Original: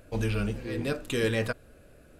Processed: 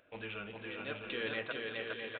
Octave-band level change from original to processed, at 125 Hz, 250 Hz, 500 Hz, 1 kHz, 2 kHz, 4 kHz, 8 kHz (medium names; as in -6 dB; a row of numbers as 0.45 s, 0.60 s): -21.0 dB, -14.0 dB, -9.5 dB, -5.0 dB, -3.5 dB, -3.5 dB, under -35 dB